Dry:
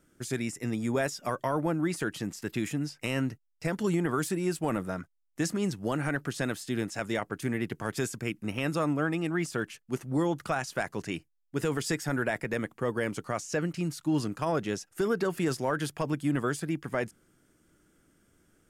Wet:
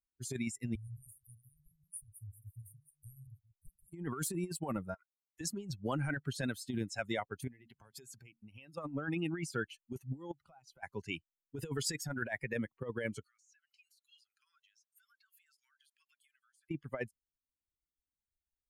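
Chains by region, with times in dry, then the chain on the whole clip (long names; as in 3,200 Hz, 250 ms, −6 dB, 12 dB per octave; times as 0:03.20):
0:00.75–0:03.94: delay that plays each chunk backwards 120 ms, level −7.5 dB + Chebyshev band-stop filter 110–9,300 Hz, order 4
0:04.94–0:05.41: high-pass filter 480 Hz 24 dB per octave + downward compressor 12 to 1, threshold −42 dBFS
0:07.47–0:08.78: downward compressor 12 to 1, threshold −37 dBFS + hum removal 45.88 Hz, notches 5
0:10.31–0:10.83: high-shelf EQ 2,600 Hz −5.5 dB + notch filter 1,700 Hz, Q 6.8 + downward compressor, threshold −42 dBFS
0:13.24–0:16.71: Butterworth high-pass 1,300 Hz 48 dB per octave + downward compressor 10 to 1, threshold −50 dBFS
whole clip: spectral dynamics exaggerated over time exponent 2; compressor whose output falls as the input rises −36 dBFS, ratio −0.5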